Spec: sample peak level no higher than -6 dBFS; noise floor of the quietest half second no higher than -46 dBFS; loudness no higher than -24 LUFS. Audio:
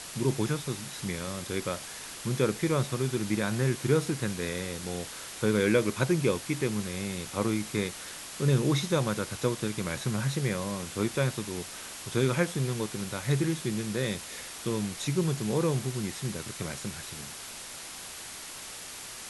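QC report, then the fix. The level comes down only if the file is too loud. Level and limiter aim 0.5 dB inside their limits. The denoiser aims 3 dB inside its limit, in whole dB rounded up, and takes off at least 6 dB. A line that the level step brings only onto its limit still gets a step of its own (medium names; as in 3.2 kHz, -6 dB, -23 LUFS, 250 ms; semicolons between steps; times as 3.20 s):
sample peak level -10.5 dBFS: pass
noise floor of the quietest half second -42 dBFS: fail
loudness -30.5 LUFS: pass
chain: noise reduction 7 dB, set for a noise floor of -42 dBFS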